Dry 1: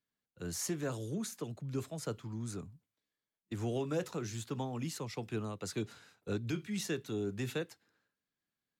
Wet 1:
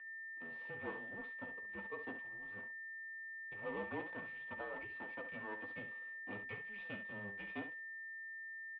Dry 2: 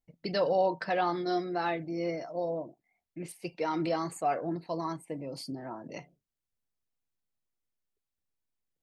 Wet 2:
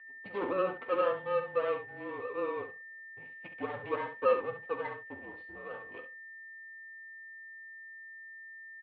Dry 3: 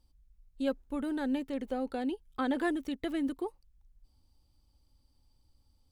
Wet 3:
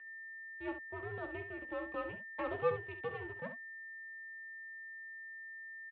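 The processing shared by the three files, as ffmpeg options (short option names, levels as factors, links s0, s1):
-filter_complex "[0:a]asplit=3[s0][s1][s2];[s0]bandpass=f=730:t=q:w=8,volume=1[s3];[s1]bandpass=f=1090:t=q:w=8,volume=0.501[s4];[s2]bandpass=f=2440:t=q:w=8,volume=0.355[s5];[s3][s4][s5]amix=inputs=3:normalize=0,equalizer=f=300:t=o:w=0.35:g=12.5,aecho=1:1:4.5:0.35,aeval=exprs='max(val(0),0)':c=same,aeval=exprs='val(0)+0.001*sin(2*PI*2000*n/s)':c=same,asplit=2[s6][s7];[s7]aecho=0:1:13|45|68:0.376|0.168|0.335[s8];[s6][s8]amix=inputs=2:normalize=0,highpass=f=400:t=q:w=0.5412,highpass=f=400:t=q:w=1.307,lowpass=f=3500:t=q:w=0.5176,lowpass=f=3500:t=q:w=0.7071,lowpass=f=3500:t=q:w=1.932,afreqshift=-200,volume=2.66"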